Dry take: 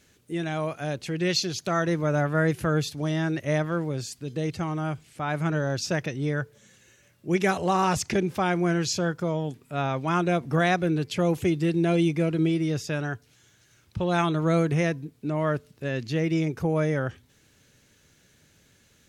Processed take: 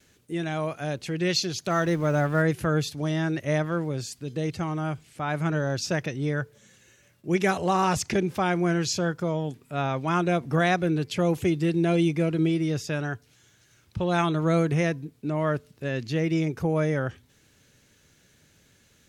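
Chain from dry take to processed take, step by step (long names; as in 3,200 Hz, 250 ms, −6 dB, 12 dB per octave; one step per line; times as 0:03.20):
0:01.70–0:02.42: mu-law and A-law mismatch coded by mu
noise gate with hold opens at −53 dBFS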